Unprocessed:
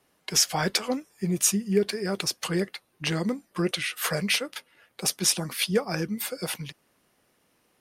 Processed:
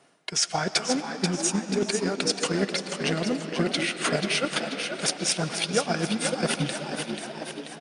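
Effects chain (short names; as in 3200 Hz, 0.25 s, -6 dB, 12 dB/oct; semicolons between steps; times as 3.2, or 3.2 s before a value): FFT band-pass 100–10000 Hz; reverse; compressor 6:1, threshold -34 dBFS, peak gain reduction 16 dB; reverse; small resonant body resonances 680/1400 Hz, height 8 dB; frequency-shifting echo 0.486 s, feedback 57%, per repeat +68 Hz, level -6 dB; on a send at -6.5 dB: reverb RT60 4.1 s, pre-delay 70 ms; on the sum: transient shaper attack +6 dB, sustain -3 dB; gain +7.5 dB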